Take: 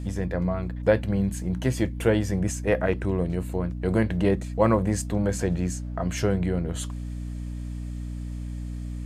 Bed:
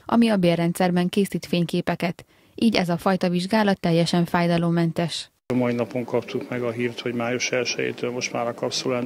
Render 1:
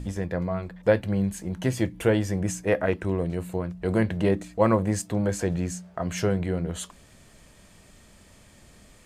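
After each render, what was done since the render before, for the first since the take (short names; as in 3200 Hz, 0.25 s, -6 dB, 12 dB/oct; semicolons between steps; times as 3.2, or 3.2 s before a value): de-hum 60 Hz, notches 5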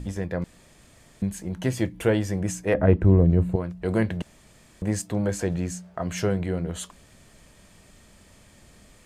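0.44–1.22 room tone; 2.74–3.56 tilt -4 dB/oct; 4.22–4.82 room tone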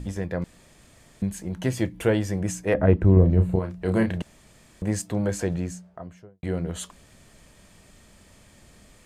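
3.13–4.18 doubler 32 ms -6 dB; 5.43–6.43 studio fade out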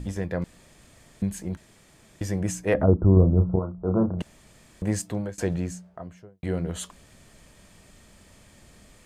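1.57–2.21 room tone; 2.83–4.19 Chebyshev low-pass 1400 Hz, order 8; 4.93–5.38 fade out equal-power, to -23 dB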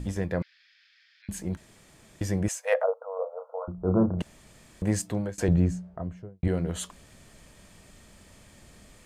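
0.42–1.29 Chebyshev band-pass 1500–5200 Hz, order 4; 2.48–3.68 brick-wall FIR high-pass 460 Hz; 5.48–6.48 tilt -2.5 dB/oct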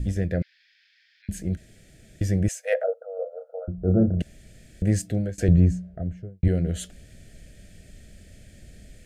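Chebyshev band-stop 650–1600 Hz, order 2; low shelf 150 Hz +11.5 dB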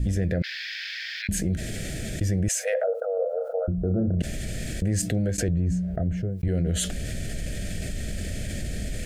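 limiter -19 dBFS, peak gain reduction 10.5 dB; fast leveller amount 70%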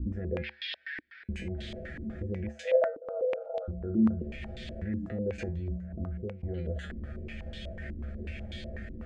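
resonator 73 Hz, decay 0.27 s, harmonics odd, mix 90%; stepped low-pass 8.1 Hz 300–3500 Hz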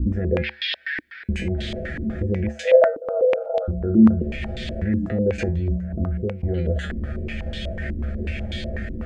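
gain +11.5 dB; limiter -3 dBFS, peak gain reduction 1.5 dB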